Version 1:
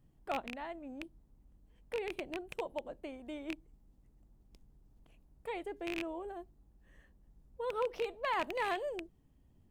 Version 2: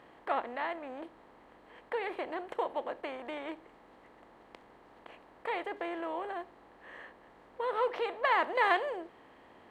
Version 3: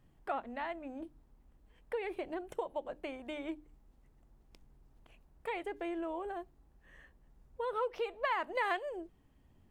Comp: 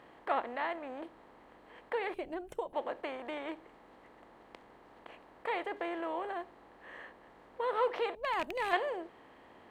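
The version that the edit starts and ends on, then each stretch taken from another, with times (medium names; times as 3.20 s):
2
2.14–2.73 s: from 3
8.15–8.73 s: from 1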